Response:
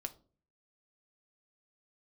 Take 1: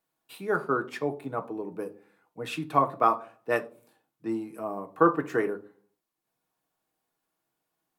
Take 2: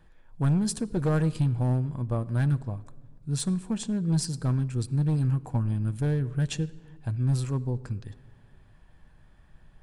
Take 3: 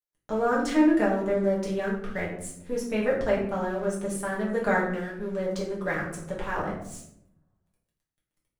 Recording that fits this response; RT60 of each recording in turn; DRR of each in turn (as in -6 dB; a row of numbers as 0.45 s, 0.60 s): 1; 0.40 s, no single decay rate, 0.75 s; 5.5 dB, 13.5 dB, -5.5 dB